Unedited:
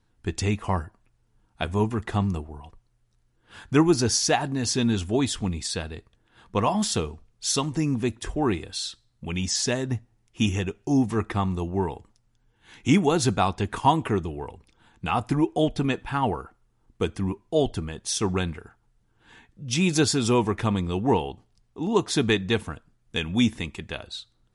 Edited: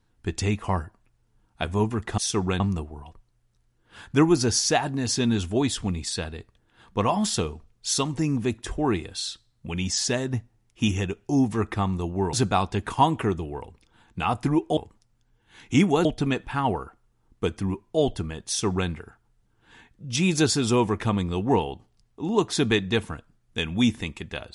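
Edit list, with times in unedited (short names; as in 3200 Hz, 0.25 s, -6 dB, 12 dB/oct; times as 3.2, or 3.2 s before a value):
11.91–13.19 move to 15.63
18.05–18.47 copy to 2.18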